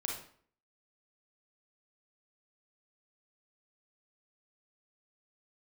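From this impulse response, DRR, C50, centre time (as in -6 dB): -1.0 dB, 3.0 dB, 38 ms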